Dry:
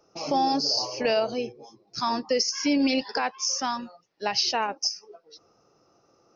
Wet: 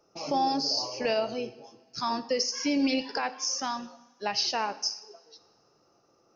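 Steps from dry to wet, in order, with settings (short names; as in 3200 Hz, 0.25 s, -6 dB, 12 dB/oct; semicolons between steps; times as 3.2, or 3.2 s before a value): two-slope reverb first 0.81 s, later 3.2 s, from -21 dB, DRR 12 dB; gain -3.5 dB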